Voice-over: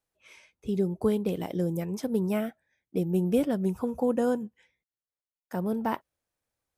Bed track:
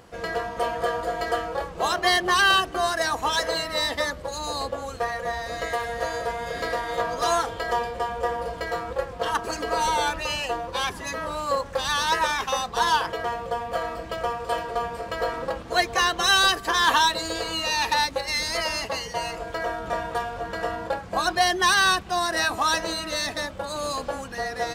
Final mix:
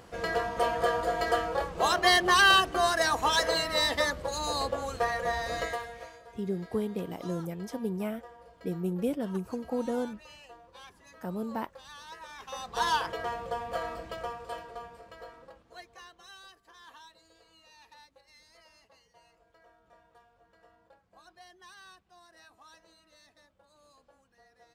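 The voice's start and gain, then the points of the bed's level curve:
5.70 s, −5.5 dB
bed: 0:05.59 −1.5 dB
0:06.20 −23.5 dB
0:12.25 −23.5 dB
0:12.81 −6 dB
0:13.93 −6 dB
0:16.42 −33 dB

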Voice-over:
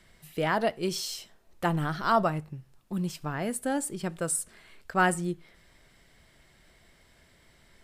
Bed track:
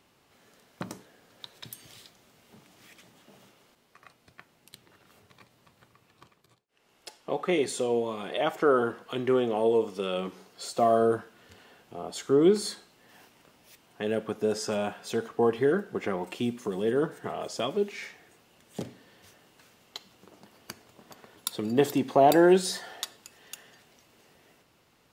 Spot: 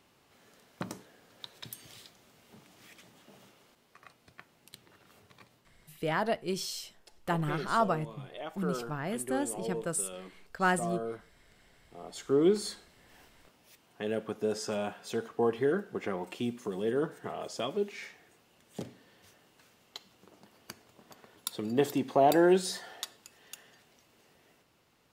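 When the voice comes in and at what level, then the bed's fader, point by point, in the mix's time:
5.65 s, −3.5 dB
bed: 0:05.55 −1 dB
0:05.76 −13.5 dB
0:11.66 −13.5 dB
0:12.33 −4 dB

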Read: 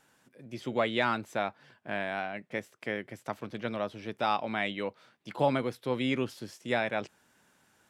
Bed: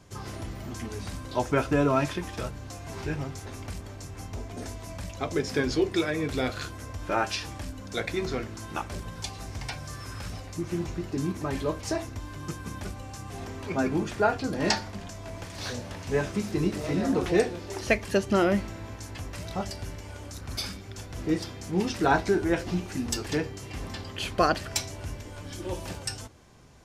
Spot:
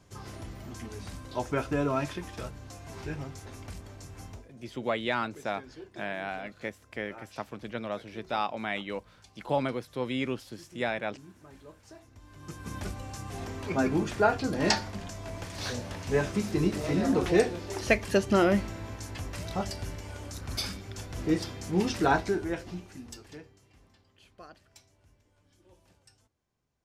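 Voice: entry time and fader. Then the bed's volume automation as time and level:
4.10 s, −1.5 dB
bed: 0:04.31 −5 dB
0:04.51 −21.5 dB
0:11.98 −21.5 dB
0:12.76 0 dB
0:21.98 0 dB
0:24.01 −27 dB

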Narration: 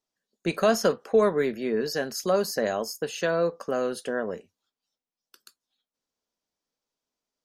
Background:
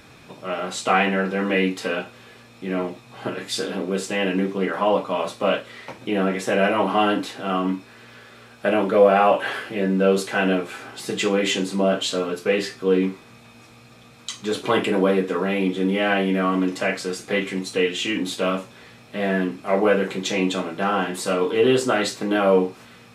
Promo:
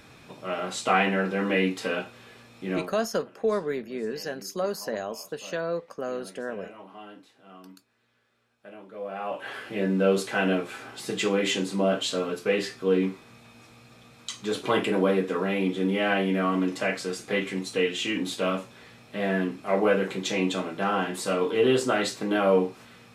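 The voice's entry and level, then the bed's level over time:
2.30 s, −5.0 dB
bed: 0:02.75 −3.5 dB
0:03.04 −25.5 dB
0:08.88 −25.5 dB
0:09.75 −4 dB

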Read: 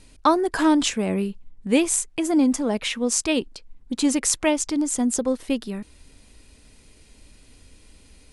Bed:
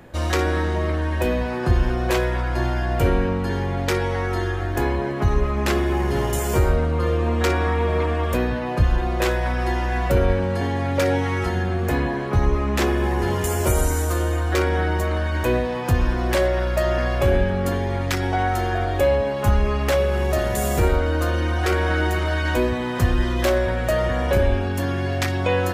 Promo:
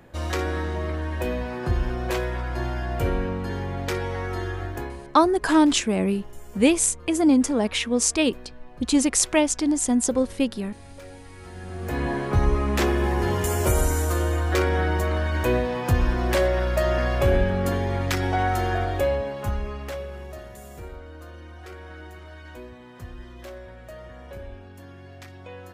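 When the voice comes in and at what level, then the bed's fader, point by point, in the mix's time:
4.90 s, +1.0 dB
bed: 0:04.65 −5.5 dB
0:05.26 −23.5 dB
0:11.31 −23.5 dB
0:12.11 −1.5 dB
0:18.75 −1.5 dB
0:20.64 −20.5 dB

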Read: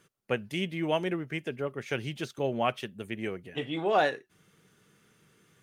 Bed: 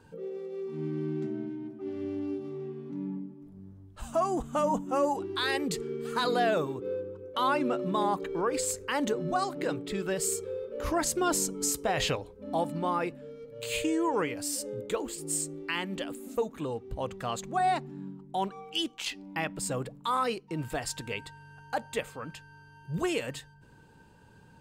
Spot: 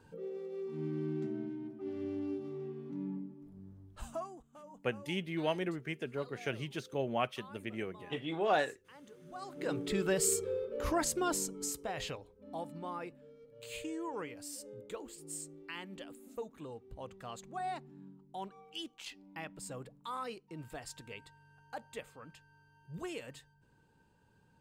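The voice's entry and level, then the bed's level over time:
4.55 s, −5.0 dB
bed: 0:04.03 −4 dB
0:04.44 −26.5 dB
0:09.15 −26.5 dB
0:09.80 0 dB
0:10.53 0 dB
0:12.10 −12 dB

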